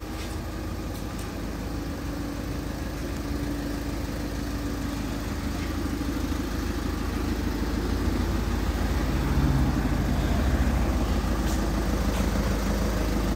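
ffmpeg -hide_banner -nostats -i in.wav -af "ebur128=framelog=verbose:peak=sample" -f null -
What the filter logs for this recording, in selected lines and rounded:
Integrated loudness:
  I:         -28.6 LUFS
  Threshold: -38.6 LUFS
Loudness range:
  LRA:         6.3 LU
  Threshold: -48.5 LUFS
  LRA low:   -32.3 LUFS
  LRA high:  -26.0 LUFS
Sample peak:
  Peak:      -11.2 dBFS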